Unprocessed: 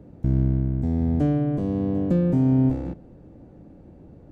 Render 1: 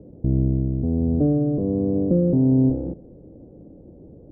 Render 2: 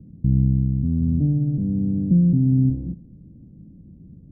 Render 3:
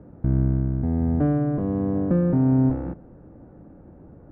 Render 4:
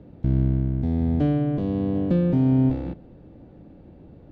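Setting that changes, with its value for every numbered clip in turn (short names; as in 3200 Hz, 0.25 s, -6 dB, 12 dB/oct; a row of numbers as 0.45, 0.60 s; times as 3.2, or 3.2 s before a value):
synth low-pass, frequency: 490, 190, 1400, 3700 Hz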